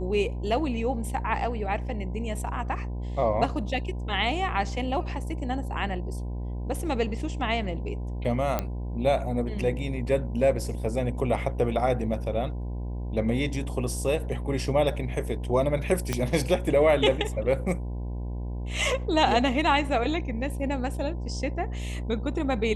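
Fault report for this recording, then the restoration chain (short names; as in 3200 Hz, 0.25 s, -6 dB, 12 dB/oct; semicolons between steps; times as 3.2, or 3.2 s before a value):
buzz 60 Hz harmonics 17 -32 dBFS
8.59 pop -12 dBFS
16.13 pop -12 dBFS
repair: de-click; de-hum 60 Hz, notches 17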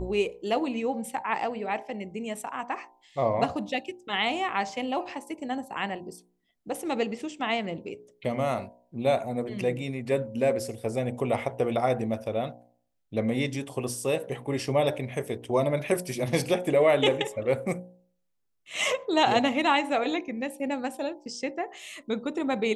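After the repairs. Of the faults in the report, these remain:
16.13 pop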